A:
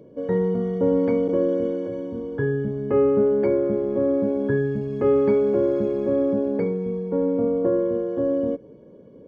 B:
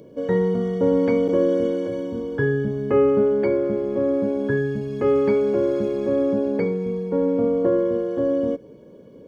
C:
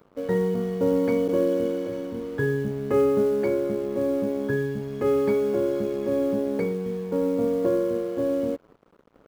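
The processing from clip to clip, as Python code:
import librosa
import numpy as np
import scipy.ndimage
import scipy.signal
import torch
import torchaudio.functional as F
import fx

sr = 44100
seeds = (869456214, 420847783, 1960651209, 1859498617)

y1 = fx.rider(x, sr, range_db=10, speed_s=2.0)
y1 = fx.high_shelf(y1, sr, hz=2300.0, db=12.0)
y2 = np.sign(y1) * np.maximum(np.abs(y1) - 10.0 ** (-44.0 / 20.0), 0.0)
y2 = fx.quant_float(y2, sr, bits=4)
y2 = y2 * 10.0 ** (-3.0 / 20.0)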